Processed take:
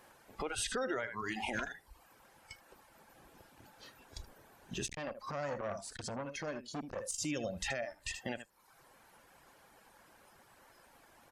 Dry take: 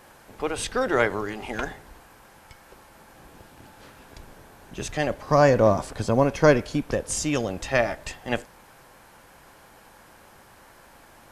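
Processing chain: reverb removal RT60 0.76 s; echo 77 ms -13.5 dB; compressor 8:1, threshold -32 dBFS, peak gain reduction 20 dB; spectral noise reduction 12 dB; limiter -29.5 dBFS, peak gain reduction 9.5 dB; low shelf 150 Hz -6 dB; 4.85–7.25 core saturation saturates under 960 Hz; gain +3.5 dB

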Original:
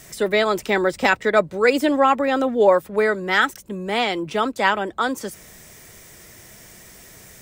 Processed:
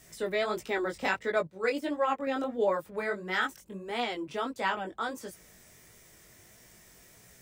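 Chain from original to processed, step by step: chorus 1.5 Hz, delay 16.5 ms, depth 5.7 ms; 1.47–2.27 upward expander 1.5:1, over -37 dBFS; gain -8.5 dB

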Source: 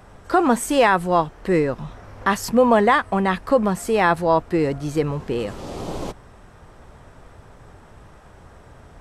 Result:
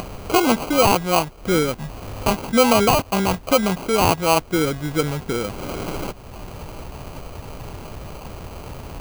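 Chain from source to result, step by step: upward compressor, threshold -22 dBFS; sample-rate reducer 1800 Hz, jitter 0%

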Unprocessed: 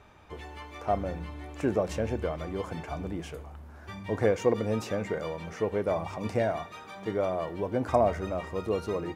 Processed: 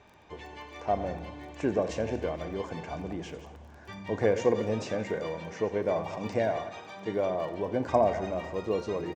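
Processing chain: regenerating reverse delay 0.108 s, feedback 41%, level -12 dB; steep low-pass 7500 Hz 36 dB/oct; low shelf 73 Hz -12 dB; notch 1300 Hz, Q 5.5; frequency-shifting echo 86 ms, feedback 60%, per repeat +34 Hz, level -18 dB; crackle 16/s -45 dBFS

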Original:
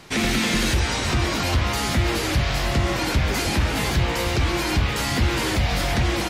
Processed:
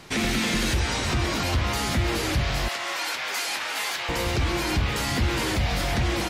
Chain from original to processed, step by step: 2.68–4.09 HPF 870 Hz 12 dB/oct; in parallel at 0 dB: limiter -19.5 dBFS, peak gain reduction 8 dB; on the sum: gain -6.5 dB

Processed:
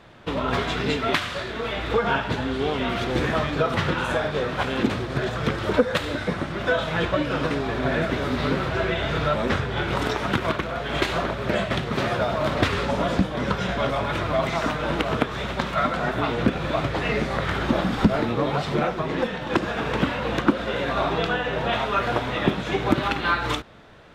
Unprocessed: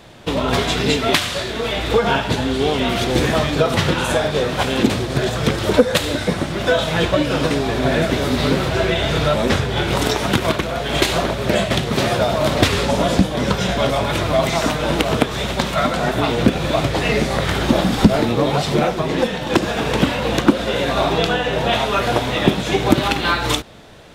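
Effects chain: EQ curve 780 Hz 0 dB, 1300 Hz +5 dB, 10000 Hz -11 dB; gain -6.5 dB

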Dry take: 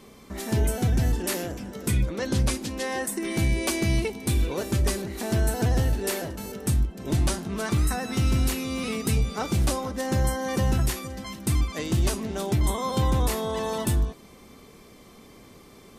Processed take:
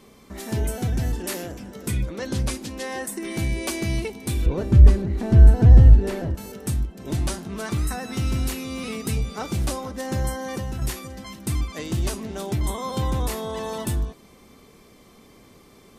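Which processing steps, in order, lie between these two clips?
4.46–6.35 RIAA curve playback; 10.4–10.82 compressor, threshold -25 dBFS, peak gain reduction 6 dB; gain -1.5 dB

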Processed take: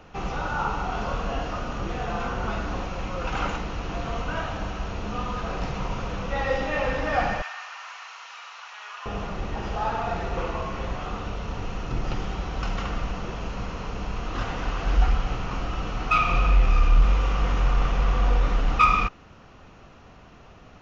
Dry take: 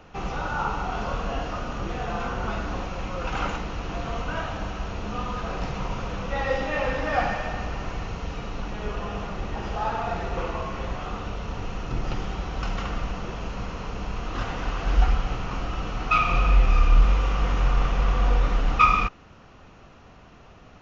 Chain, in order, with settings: 7.42–9.06 HPF 1000 Hz 24 dB/oct; in parallel at -3.5 dB: soft clip -13.5 dBFS, distortion -16 dB; on the sum: gain -4 dB

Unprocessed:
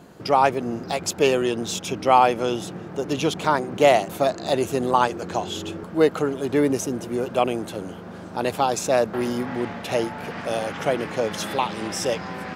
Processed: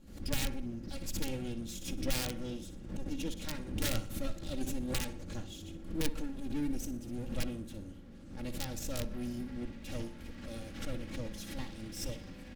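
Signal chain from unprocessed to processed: minimum comb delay 3.6 ms; on a send: feedback echo 61 ms, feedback 43%, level -11 dB; on the sum: wrapped overs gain 10.5 dB; passive tone stack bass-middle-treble 10-0-1; backwards sustainer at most 88 dB/s; gain +5.5 dB

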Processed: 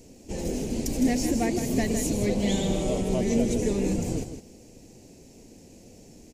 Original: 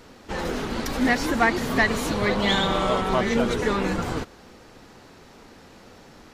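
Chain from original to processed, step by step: EQ curve 310 Hz 0 dB, 670 Hz -6 dB, 1300 Hz -28 dB, 2500 Hz -7 dB, 3600 Hz -13 dB, 6900 Hz +6 dB, 12000 Hz +1 dB; echo 0.16 s -9 dB

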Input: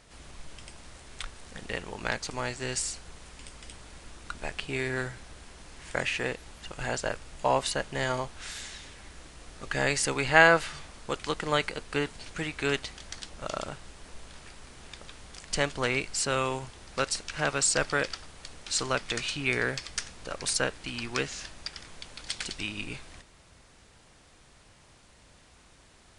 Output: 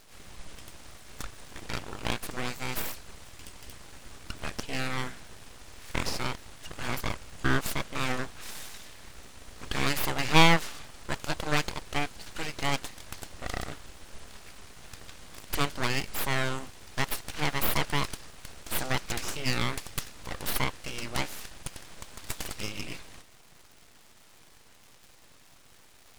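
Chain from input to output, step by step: crackle 390/s -46 dBFS; full-wave rectifier; gain +1.5 dB

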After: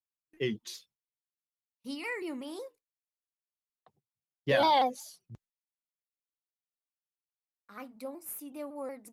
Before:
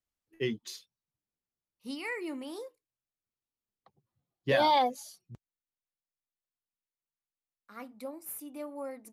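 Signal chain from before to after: gate with hold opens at -56 dBFS; shaped vibrato saw down 5.4 Hz, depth 100 cents

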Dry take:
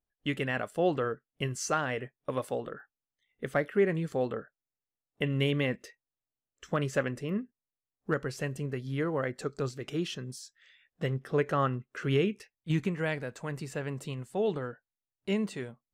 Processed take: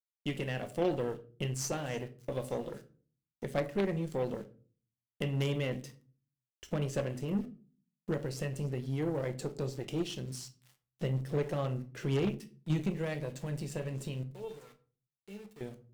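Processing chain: bell 1300 Hz -14 dB 1.1 oct; in parallel at +2 dB: compressor 6:1, threshold -39 dBFS, peak gain reduction 16.5 dB; 14.23–15.61 on the sum: resonator 450 Hz, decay 0.19 s, harmonics all, mix 90%; on a send: thin delay 0.296 s, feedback 70%, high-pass 2600 Hz, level -20.5 dB; on the sum: sample gate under -47.5 dBFS; shoebox room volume 300 m³, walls furnished, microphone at 0.82 m; added harmonics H 4 -10 dB, 6 -10 dB, 8 -15 dB, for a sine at -13 dBFS; gain -6 dB

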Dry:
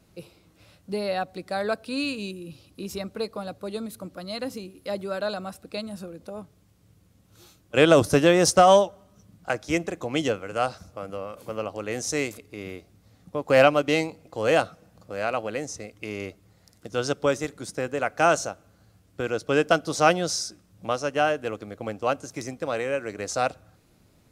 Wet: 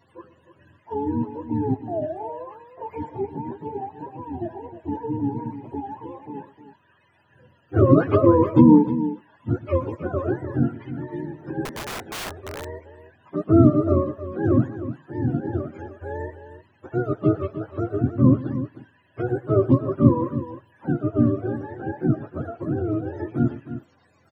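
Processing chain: spectrum mirrored in octaves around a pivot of 420 Hz; tapped delay 0.119/0.309 s -18.5/-12 dB; 11.65–12.66 wrapped overs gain 30.5 dB; gain +3.5 dB

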